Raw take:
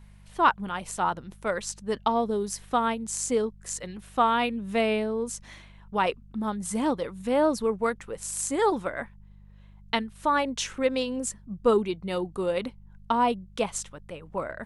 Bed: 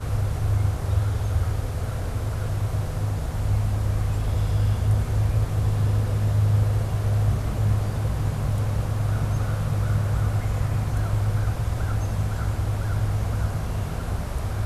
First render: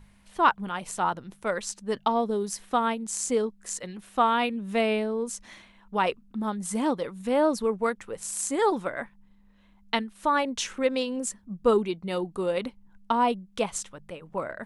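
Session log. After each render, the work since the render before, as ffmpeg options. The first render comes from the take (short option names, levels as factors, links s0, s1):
-af "bandreject=f=50:t=h:w=4,bandreject=f=100:t=h:w=4,bandreject=f=150:t=h:w=4"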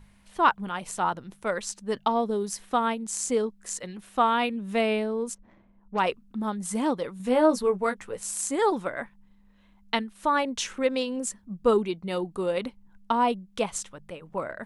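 -filter_complex "[0:a]asplit=3[s0][s1][s2];[s0]afade=t=out:st=5.33:d=0.02[s3];[s1]adynamicsmooth=sensitivity=3:basefreq=560,afade=t=in:st=5.33:d=0.02,afade=t=out:st=5.98:d=0.02[s4];[s2]afade=t=in:st=5.98:d=0.02[s5];[s3][s4][s5]amix=inputs=3:normalize=0,asettb=1/sr,asplit=3[s6][s7][s8];[s6]atrim=end=7.184[s9];[s7]atrim=start=7.18:end=8.33,asetpts=PTS-STARTPTS,afade=t=in:d=0.004:c=qsin,afade=t=out:st=1.146:d=0.004:c=qsin,asplit=2[s10][s11];[s11]adelay=16,volume=0.562[s12];[s10][s12]amix=inputs=2:normalize=0,atrim=end_sample=50715[s13];[s8]atrim=start=8.326[s14];[s9][s13]acrossfade=d=0.004:c1=hsin:c2=qsin[s15];[s15][s14]acrossfade=d=0.004:c1=qsin:c2=hsin"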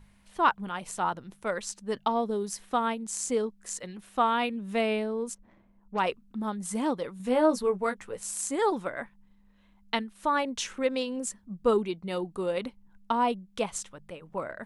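-af "volume=0.75"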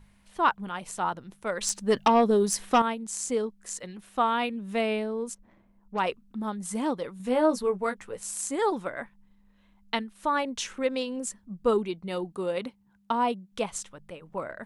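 -filter_complex "[0:a]asettb=1/sr,asplit=3[s0][s1][s2];[s0]atrim=end=1.614[s3];[s1]atrim=start=1.61:end=2.82,asetpts=PTS-STARTPTS,afade=t=in:d=0.004:c=qsin,afade=t=out:st=1.206:d=0.004:c=qsin,aeval=exprs='0.2*sin(PI/2*1.78*val(0)/0.2)':c=same[s4];[s2]atrim=start=2.816[s5];[s3][s4]acrossfade=d=0.004:c1=hsin:c2=qsin[s6];[s6][s5]acrossfade=d=0.004:c1=qsin:c2=hsin,asettb=1/sr,asplit=3[s7][s8][s9];[s7]atrim=end=12.324[s10];[s8]atrim=start=12.32:end=13.52,asetpts=PTS-STARTPTS,afade=t=in:d=0.004:c=qsin,afade=t=out:st=1.196:d=0.004:c=qsin,highpass=83[s11];[s9]atrim=start=13.516[s12];[s10][s11]acrossfade=d=0.004:c1=hsin:c2=qsin[s13];[s13][s12]acrossfade=d=0.004:c1=qsin:c2=hsin"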